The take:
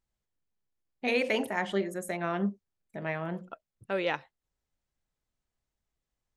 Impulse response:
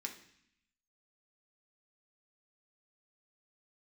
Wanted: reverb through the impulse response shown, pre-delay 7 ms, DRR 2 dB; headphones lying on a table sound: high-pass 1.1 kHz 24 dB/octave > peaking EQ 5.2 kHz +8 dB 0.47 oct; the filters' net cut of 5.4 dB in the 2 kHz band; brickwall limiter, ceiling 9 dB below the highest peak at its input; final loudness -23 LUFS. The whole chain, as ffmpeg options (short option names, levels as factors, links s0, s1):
-filter_complex "[0:a]equalizer=f=2000:t=o:g=-7,alimiter=level_in=1.19:limit=0.0631:level=0:latency=1,volume=0.841,asplit=2[s0][s1];[1:a]atrim=start_sample=2205,adelay=7[s2];[s1][s2]afir=irnorm=-1:irlink=0,volume=0.944[s3];[s0][s3]amix=inputs=2:normalize=0,highpass=f=1100:w=0.5412,highpass=f=1100:w=1.3066,equalizer=f=5200:t=o:w=0.47:g=8,volume=9.44"